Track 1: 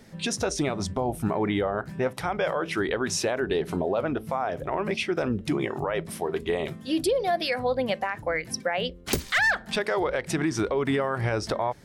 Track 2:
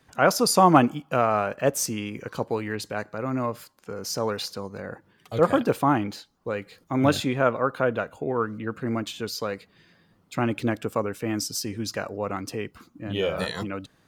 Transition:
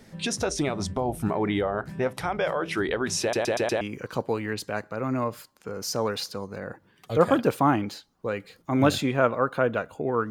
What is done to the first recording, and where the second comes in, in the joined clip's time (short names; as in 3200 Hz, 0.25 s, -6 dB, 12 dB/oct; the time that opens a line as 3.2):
track 1
3.21 stutter in place 0.12 s, 5 plays
3.81 switch to track 2 from 2.03 s